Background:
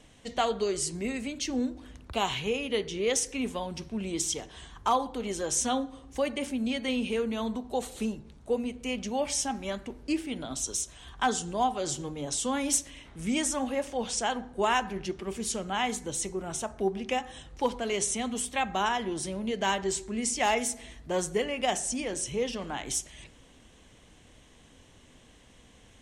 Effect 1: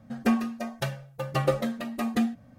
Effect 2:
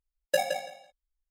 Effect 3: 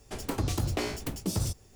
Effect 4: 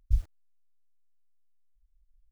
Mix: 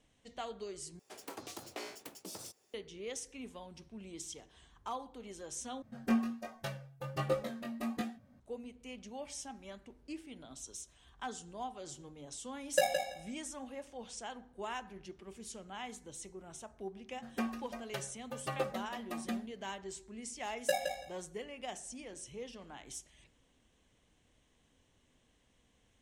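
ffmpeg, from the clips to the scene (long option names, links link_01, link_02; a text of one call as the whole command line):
ffmpeg -i bed.wav -i cue0.wav -i cue1.wav -i cue2.wav -filter_complex "[1:a]asplit=2[link_01][link_02];[2:a]asplit=2[link_03][link_04];[0:a]volume=-15dB[link_05];[3:a]highpass=400[link_06];[link_01]flanger=delay=19:depth=2.9:speed=1.3[link_07];[link_03]acontrast=25[link_08];[link_02]highpass=frequency=280:poles=1[link_09];[link_05]asplit=3[link_10][link_11][link_12];[link_10]atrim=end=0.994[link_13];[link_06]atrim=end=1.75,asetpts=PTS-STARTPTS,volume=-10dB[link_14];[link_11]atrim=start=2.736:end=5.824[link_15];[link_07]atrim=end=2.58,asetpts=PTS-STARTPTS,volume=-6dB[link_16];[link_12]atrim=start=8.396[link_17];[link_08]atrim=end=1.3,asetpts=PTS-STARTPTS,volume=-7.5dB,afade=type=in:duration=0.004:curve=hsin,afade=type=out:start_time=1.296:duration=0.004:curve=hsin,adelay=12440[link_18];[link_09]atrim=end=2.58,asetpts=PTS-STARTPTS,volume=-9.5dB,afade=type=in:duration=0.004:curve=hsin,afade=type=out:start_time=2.576:duration=0.004:curve=hsin,adelay=17120[link_19];[link_04]atrim=end=1.3,asetpts=PTS-STARTPTS,volume=-6dB,afade=type=in:duration=0.004:curve=hsin,afade=type=out:start_time=1.296:duration=0.004:curve=hsin,adelay=20350[link_20];[link_13][link_14]acrossfade=duration=0.004:curve1=hsin:curve2=hsin[link_21];[link_21][link_15]acrossfade=duration=0.004:curve1=hsin:curve2=hsin[link_22];[link_22][link_16]acrossfade=duration=0.004:curve1=hsin:curve2=hsin[link_23];[link_23][link_17]acrossfade=duration=0.004:curve1=hsin:curve2=hsin[link_24];[link_24][link_18][link_19][link_20]amix=inputs=4:normalize=0" out.wav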